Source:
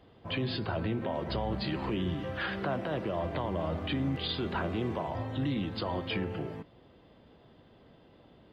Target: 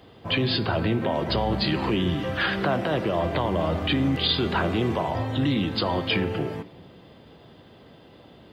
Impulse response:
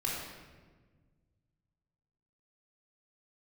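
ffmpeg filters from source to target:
-filter_complex "[0:a]highpass=63,highshelf=f=3600:g=7,asplit=2[s0][s1];[1:a]atrim=start_sample=2205[s2];[s1][s2]afir=irnorm=-1:irlink=0,volume=0.0891[s3];[s0][s3]amix=inputs=2:normalize=0,volume=2.37"

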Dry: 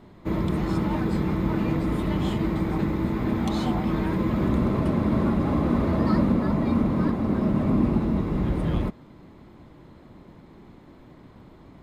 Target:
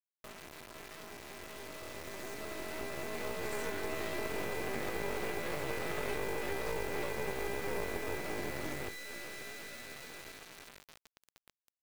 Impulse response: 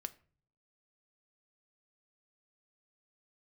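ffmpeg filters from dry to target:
-filter_complex "[1:a]atrim=start_sample=2205,afade=t=out:st=0.15:d=0.01,atrim=end_sample=7056[s0];[0:a][s0]afir=irnorm=-1:irlink=0,acompressor=threshold=0.0112:ratio=12,aeval=exprs='val(0)+0.00282*sin(2*PI*1000*n/s)':c=same,aresample=16000,acrusher=bits=5:mode=log:mix=0:aa=0.000001,aresample=44100,asetrate=88200,aresample=44100,atempo=0.5,equalizer=f=970:w=4.8:g=-12,dynaudnorm=f=310:g=17:m=5.62,lowshelf=f=210:g=-11.5,afreqshift=-13,bandreject=f=50:t=h:w=6,bandreject=f=100:t=h:w=6,bandreject=f=150:t=h:w=6,bandreject=f=200:t=h:w=6,acrusher=bits=4:dc=4:mix=0:aa=0.000001,volume=0.668"

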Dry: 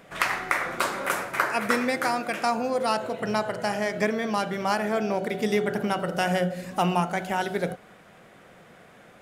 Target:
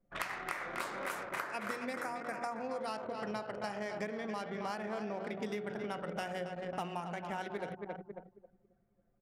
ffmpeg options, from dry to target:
-filter_complex "[0:a]asettb=1/sr,asplit=3[s0][s1][s2];[s0]atrim=end=1.934[s3];[s1]atrim=start=1.93:end=2.59,asetpts=PTS-STARTPTS,afade=t=in:d=0.004:c=qsin,afade=t=out:st=0.656:d=0.004:c=qsin,asuperstop=centerf=3500:order=4:qfactor=0.98[s4];[s2]atrim=start=2.586[s5];[s3][s4]acrossfade=d=0.004:c1=hsin:c2=qsin[s6];[s6][s5]acrossfade=d=0.004:c1=qsin:c2=hsin,asplit=2[s7][s8];[s8]aecho=0:1:271|542|813|1084|1355|1626:0.355|0.185|0.0959|0.0499|0.0259|0.0135[s9];[s7][s9]amix=inputs=2:normalize=0,anlmdn=10,acompressor=threshold=0.0178:ratio=6,bandreject=f=60:t=h:w=6,bandreject=f=120:t=h:w=6,bandreject=f=180:t=h:w=6,bandreject=f=240:t=h:w=6,volume=0.841"

